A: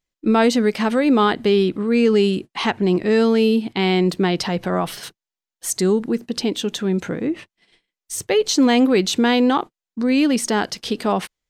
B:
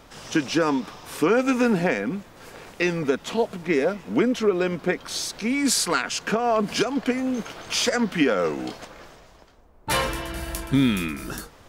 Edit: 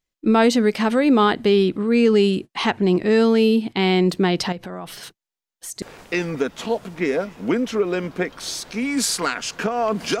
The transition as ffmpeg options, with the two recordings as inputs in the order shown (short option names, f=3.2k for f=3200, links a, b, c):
-filter_complex "[0:a]asettb=1/sr,asplit=3[a][b][c];[a]atrim=end=4.524[d];[b]atrim=start=4.52:end=5.82,asetpts=PTS-STARTPTS,afade=t=in:d=0.004:c=qsin,afade=t=out:st=1.296:d=0.004:c=qsin,acompressor=threshold=-34dB:ratio=2.5:attack=3.2:release=140:knee=1:detection=peak[e];[c]atrim=start=5.816[f];[d][e]acrossfade=d=0.004:c1=hsin:c2=qsin[g];[g][f]acrossfade=d=0.004:c1=qsin:c2=hsin,apad=whole_dur=10.2,atrim=end=10.2,atrim=end=5.822[h];[1:a]atrim=start=2.498:end=6.88[i];[h][i]acrossfade=d=0.004:c1=hsin:c2=hsin"